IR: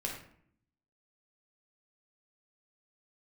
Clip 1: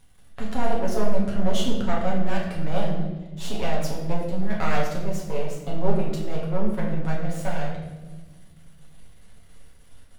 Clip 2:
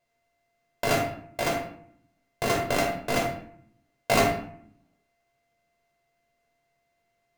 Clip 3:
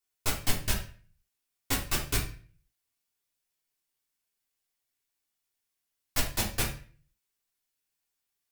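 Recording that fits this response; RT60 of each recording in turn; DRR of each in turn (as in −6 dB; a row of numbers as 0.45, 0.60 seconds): 2; 1.2, 0.60, 0.40 seconds; −4.5, −1.5, −4.0 decibels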